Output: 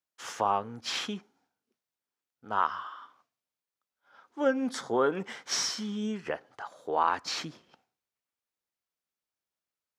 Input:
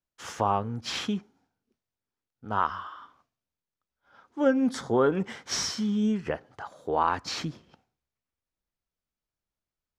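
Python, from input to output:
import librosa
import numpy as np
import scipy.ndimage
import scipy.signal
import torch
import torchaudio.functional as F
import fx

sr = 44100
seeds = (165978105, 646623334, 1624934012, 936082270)

y = fx.highpass(x, sr, hz=480.0, slope=6)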